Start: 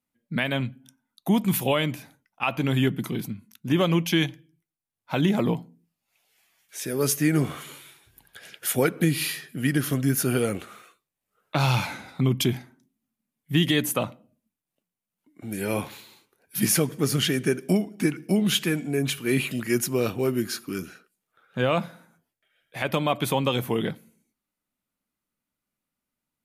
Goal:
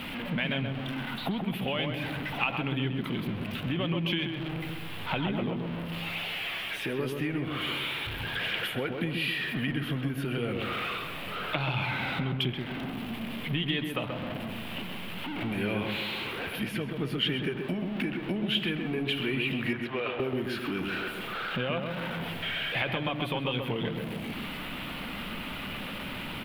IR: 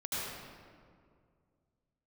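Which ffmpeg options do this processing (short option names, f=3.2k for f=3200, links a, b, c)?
-filter_complex "[0:a]aeval=exprs='val(0)+0.5*0.0299*sgn(val(0))':c=same,asettb=1/sr,asplit=3[a][b][c];[a]atrim=end=19.734[d];[b]atrim=start=19.73:end=20.2,asetpts=PTS-STARTPTS,afade=t=in:d=0.004:c=qsin,afade=t=out:st=0.466:d=0.004:c=qsin,acrossover=split=480 3700:gain=0.0891 1 0.126[e][f][g];[e][f][g]amix=inputs=3:normalize=0[h];[c]atrim=start=20.196[i];[d][h]acrossfade=d=0.004:c1=hsin:c2=qsin[j];[j][i]acrossfade=d=0.004:c1=qsin:c2=hsin,acompressor=threshold=-30dB:ratio=6,highshelf=f=4.4k:t=q:w=3:g=-14,asplit=2[k][l];[l]adelay=131,lowpass=f=1.4k:p=1,volume=-3.5dB,asplit=2[m][n];[n]adelay=131,lowpass=f=1.4k:p=1,volume=0.51,asplit=2[o][p];[p]adelay=131,lowpass=f=1.4k:p=1,volume=0.51,asplit=2[q][r];[r]adelay=131,lowpass=f=1.4k:p=1,volume=0.51,asplit=2[s][t];[t]adelay=131,lowpass=f=1.4k:p=1,volume=0.51,asplit=2[u][v];[v]adelay=131,lowpass=f=1.4k:p=1,volume=0.51,asplit=2[w][x];[x]adelay=131,lowpass=f=1.4k:p=1,volume=0.51[y];[k][m][o][q][s][u][w][y]amix=inputs=8:normalize=0"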